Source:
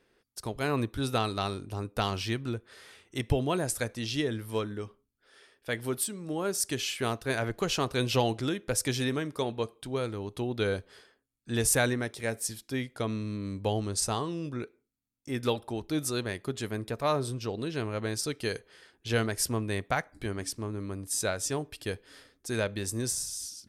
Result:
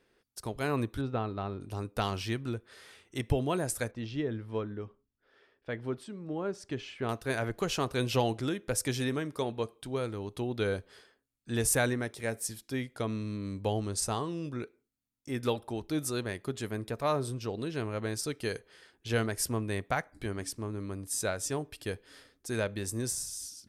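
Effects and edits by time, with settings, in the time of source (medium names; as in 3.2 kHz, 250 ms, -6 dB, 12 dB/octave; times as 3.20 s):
1.01–1.61 s: tape spacing loss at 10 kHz 39 dB
3.91–7.09 s: tape spacing loss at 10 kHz 27 dB
whole clip: dynamic bell 4.1 kHz, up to -3 dB, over -46 dBFS, Q 0.88; trim -1.5 dB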